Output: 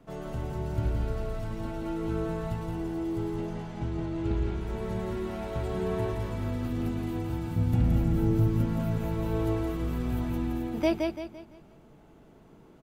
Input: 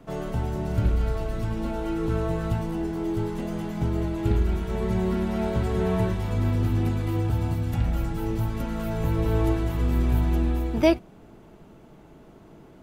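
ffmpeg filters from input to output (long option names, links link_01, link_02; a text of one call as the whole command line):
ffmpeg -i in.wav -filter_complex "[0:a]asettb=1/sr,asplit=3[link_01][link_02][link_03];[link_01]atrim=end=3.364[link_04];[link_02]atrim=start=3.36:end=4.61,asetpts=PTS-STARTPTS,afade=type=in:duration=0.004:curve=qsin,afade=type=out:start_time=1.246:duration=0.004:curve=qsin,lowpass=6600[link_05];[link_03]atrim=start=4.606[link_06];[link_04][link_05]acrossfade=duration=0.004:curve1=hsin:curve2=qsin[link_07];[link_07][link_06]acrossfade=duration=0.004:curve1=qsin:curve2=hsin,asettb=1/sr,asplit=3[link_08][link_09][link_10];[link_08]atrim=end=7.564[link_11];[link_09]atrim=start=7.56:end=8.98,asetpts=PTS-STARTPTS,afade=type=in:duration=0.004:curve=qsin,afade=type=out:start_time=1.416:duration=0.004:curve=qsin,equalizer=frequency=150:width=0.39:gain=10[link_12];[link_10]atrim=start=8.976[link_13];[link_11][link_12]acrossfade=duration=0.004:curve1=hsin:curve2=qsin[link_14];[link_14][link_13]acrossfade=duration=0.004:curve1=qsin:curve2=hsin,aecho=1:1:170|340|510|680|850:0.631|0.24|0.0911|0.0346|0.0132,volume=-7dB" out.wav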